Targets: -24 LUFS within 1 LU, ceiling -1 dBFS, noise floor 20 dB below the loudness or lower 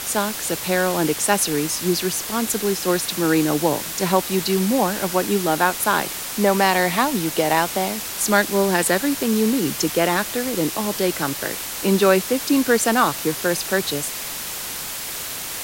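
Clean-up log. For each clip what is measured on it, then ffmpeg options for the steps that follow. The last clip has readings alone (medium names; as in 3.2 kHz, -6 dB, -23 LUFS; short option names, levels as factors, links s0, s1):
noise floor -30 dBFS; noise floor target -41 dBFS; loudness -20.5 LUFS; peak level -3.0 dBFS; loudness target -24.0 LUFS
-> -af "afftdn=nr=11:nf=-30"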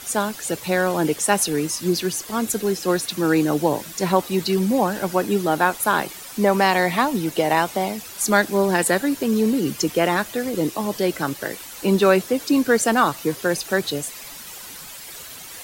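noise floor -38 dBFS; noise floor target -41 dBFS
-> -af "afftdn=nr=6:nf=-38"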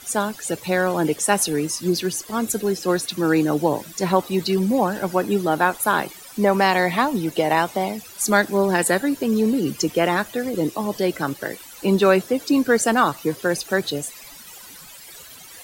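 noise floor -42 dBFS; loudness -21.0 LUFS; peak level -3.5 dBFS; loudness target -24.0 LUFS
-> -af "volume=0.708"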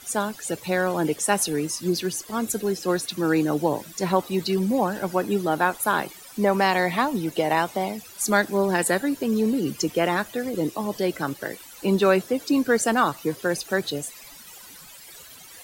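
loudness -24.0 LUFS; peak level -6.5 dBFS; noise floor -45 dBFS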